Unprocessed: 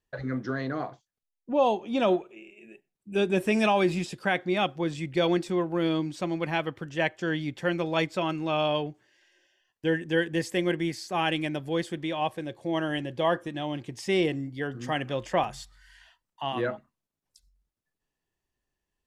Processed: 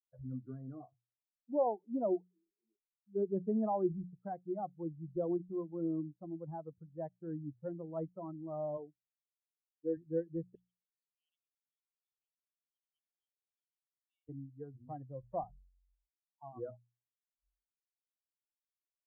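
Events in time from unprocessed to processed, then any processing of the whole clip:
0:08.77–0:09.97: high-pass filter 210 Hz
0:10.55–0:14.29: linear-phase brick-wall high-pass 2,200 Hz
whole clip: spectral dynamics exaggerated over time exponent 2; inverse Chebyshev low-pass filter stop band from 2,200 Hz, stop band 50 dB; mains-hum notches 60/120/180 Hz; level −5.5 dB

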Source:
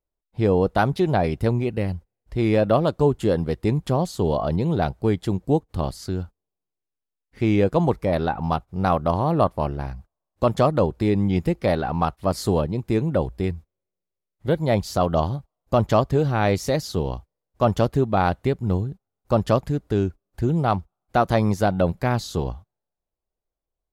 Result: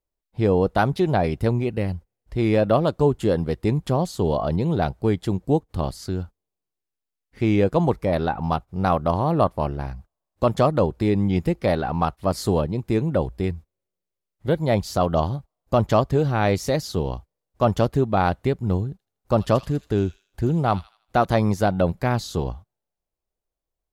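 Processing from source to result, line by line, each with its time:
0:18.91–0:21.25: delay with a high-pass on its return 80 ms, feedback 37%, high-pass 2,900 Hz, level −7 dB

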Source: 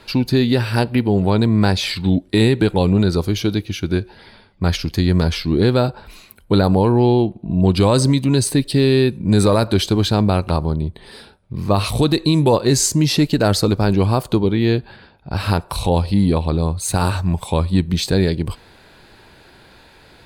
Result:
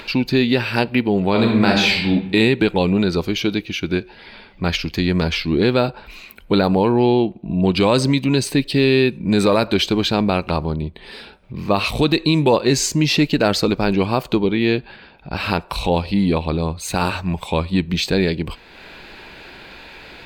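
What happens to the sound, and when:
0:01.30–0:02.09: thrown reverb, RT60 0.82 s, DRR 0 dB
whole clip: graphic EQ with 15 bands 100 Hz −11 dB, 2,500 Hz +8 dB, 10,000 Hz −11 dB; upward compression, threshold −31 dBFS

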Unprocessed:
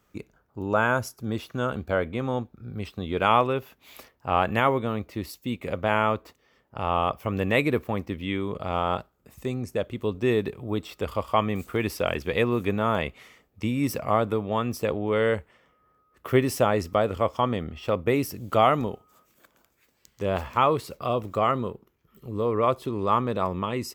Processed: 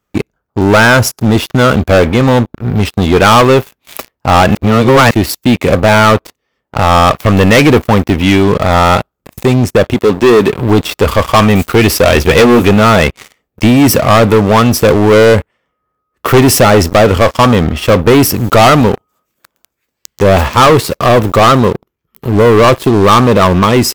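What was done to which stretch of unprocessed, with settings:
0:04.55–0:05.11: reverse
0:09.94–0:10.53: high-pass filter 150 Hz
0:12.05–0:12.63: double-tracking delay 13 ms −6 dB
whole clip: leveller curve on the samples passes 5; level +6 dB

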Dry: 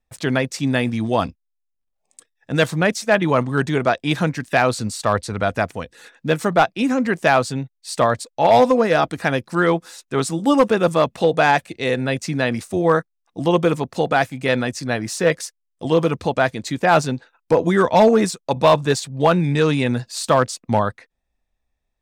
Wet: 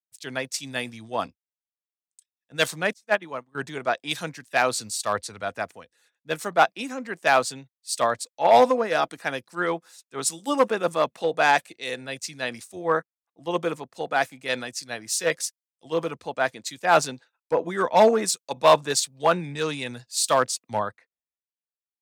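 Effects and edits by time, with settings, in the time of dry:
0:02.93–0:03.55: expander for the loud parts 2.5 to 1, over −30 dBFS
whole clip: high-pass filter 460 Hz 6 dB per octave; high-shelf EQ 4,400 Hz +6 dB; multiband upward and downward expander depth 100%; level −5.5 dB

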